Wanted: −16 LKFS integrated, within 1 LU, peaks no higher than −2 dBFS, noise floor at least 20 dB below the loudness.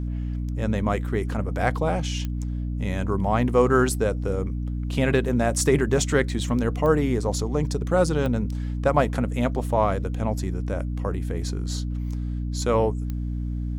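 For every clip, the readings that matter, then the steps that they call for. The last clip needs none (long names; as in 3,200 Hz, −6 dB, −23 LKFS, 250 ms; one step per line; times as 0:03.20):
number of clicks 4; mains hum 60 Hz; hum harmonics up to 300 Hz; level of the hum −25 dBFS; integrated loudness −24.5 LKFS; sample peak −6.5 dBFS; target loudness −16.0 LKFS
→ click removal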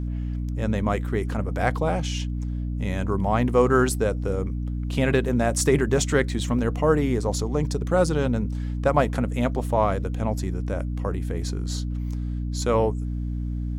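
number of clicks 0; mains hum 60 Hz; hum harmonics up to 300 Hz; level of the hum −25 dBFS
→ hum removal 60 Hz, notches 5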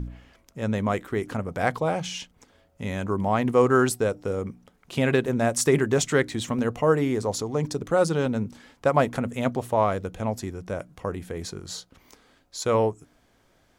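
mains hum none found; integrated loudness −25.5 LKFS; sample peak −7.0 dBFS; target loudness −16.0 LKFS
→ level +9.5 dB
brickwall limiter −2 dBFS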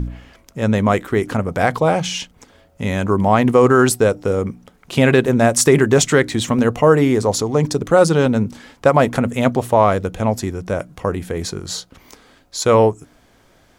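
integrated loudness −16.5 LKFS; sample peak −2.0 dBFS; background noise floor −54 dBFS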